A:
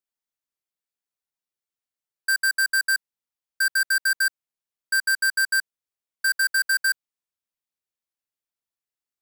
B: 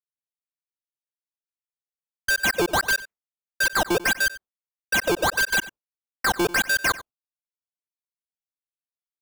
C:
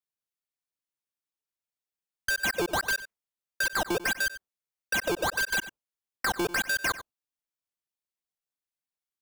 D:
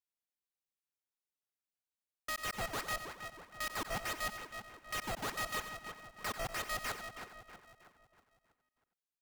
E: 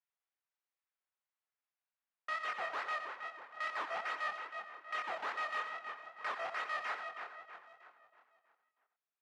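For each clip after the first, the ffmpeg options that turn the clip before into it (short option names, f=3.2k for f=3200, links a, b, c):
-filter_complex "[0:a]acrusher=samples=13:mix=1:aa=0.000001:lfo=1:lforange=20.8:lforate=1.6,asplit=2[a][b];[b]adelay=93.29,volume=-17dB,highshelf=f=4k:g=-2.1[c];[a][c]amix=inputs=2:normalize=0,agate=range=-33dB:threshold=-37dB:ratio=3:detection=peak"
-af "acompressor=threshold=-29dB:ratio=3"
-filter_complex "[0:a]alimiter=level_in=6.5dB:limit=-24dB:level=0:latency=1:release=15,volume=-6.5dB,asplit=2[a][b];[b]adelay=320,lowpass=f=2.2k:p=1,volume=-6.5dB,asplit=2[c][d];[d]adelay=320,lowpass=f=2.2k:p=1,volume=0.51,asplit=2[e][f];[f]adelay=320,lowpass=f=2.2k:p=1,volume=0.51,asplit=2[g][h];[h]adelay=320,lowpass=f=2.2k:p=1,volume=0.51,asplit=2[i][j];[j]adelay=320,lowpass=f=2.2k:p=1,volume=0.51,asplit=2[k][l];[l]adelay=320,lowpass=f=2.2k:p=1,volume=0.51[m];[c][e][g][i][k][m]amix=inputs=6:normalize=0[n];[a][n]amix=inputs=2:normalize=0,aeval=exprs='val(0)*sgn(sin(2*PI*320*n/s))':c=same,volume=-6dB"
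-af "flanger=delay=22.5:depth=5.9:speed=2.4,asoftclip=type=tanh:threshold=-36dB,highpass=770,lowpass=2.1k,volume=8.5dB"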